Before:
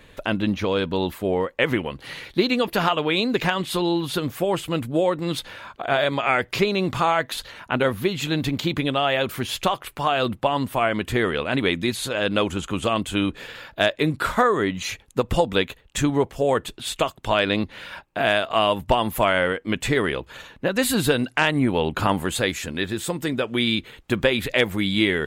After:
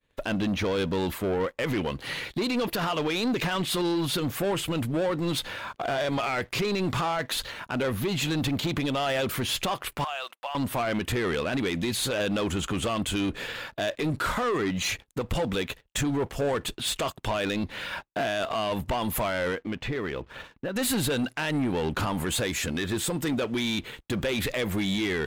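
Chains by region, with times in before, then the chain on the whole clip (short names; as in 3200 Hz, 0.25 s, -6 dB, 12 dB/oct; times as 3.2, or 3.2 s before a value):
10.04–10.55 HPF 670 Hz 24 dB/oct + bell 2700 Hz +4.5 dB 0.32 oct + compressor 3:1, threshold -36 dBFS
19.55–20.76 compressor 2.5:1, threshold -32 dBFS + air absorption 210 m
whole clip: expander -39 dBFS; limiter -16.5 dBFS; sample leveller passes 2; gain -4.5 dB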